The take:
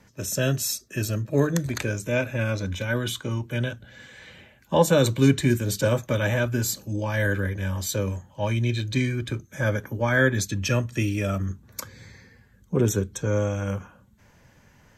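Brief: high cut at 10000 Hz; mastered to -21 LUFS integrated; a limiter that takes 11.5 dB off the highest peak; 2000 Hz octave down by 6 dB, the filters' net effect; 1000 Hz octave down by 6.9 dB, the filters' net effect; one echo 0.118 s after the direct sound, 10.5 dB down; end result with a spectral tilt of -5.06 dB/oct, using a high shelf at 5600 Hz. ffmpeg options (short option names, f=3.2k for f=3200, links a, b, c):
-af "lowpass=10k,equalizer=f=1k:t=o:g=-7.5,equalizer=f=2k:t=o:g=-5.5,highshelf=f=5.6k:g=3.5,alimiter=limit=-19dB:level=0:latency=1,aecho=1:1:118:0.299,volume=8dB"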